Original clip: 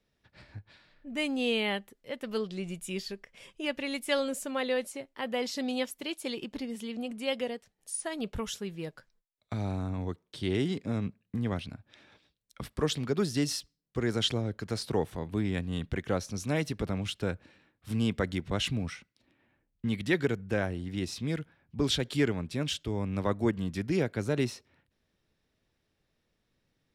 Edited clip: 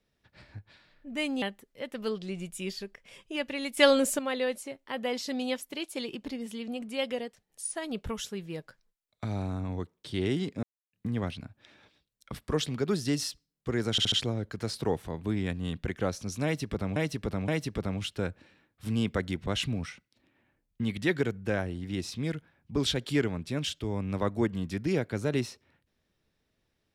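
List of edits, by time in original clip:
1.42–1.71 cut
4.06–4.48 gain +8 dB
10.92–11.22 mute
14.2 stutter 0.07 s, 4 plays
16.52–17.04 loop, 3 plays

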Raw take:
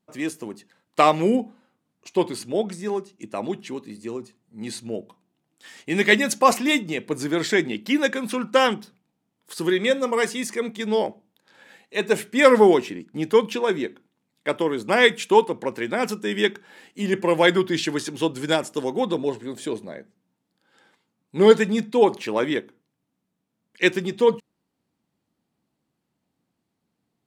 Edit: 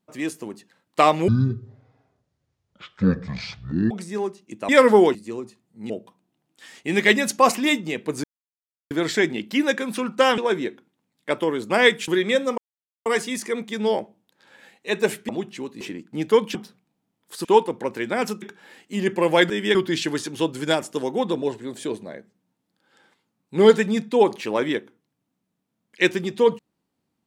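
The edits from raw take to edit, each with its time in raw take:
1.28–2.62 speed 51%
3.4–3.92 swap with 12.36–12.82
4.67–4.92 cut
7.26 insert silence 0.67 s
8.73–9.63 swap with 13.56–15.26
10.13 insert silence 0.48 s
16.23–16.48 move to 17.56

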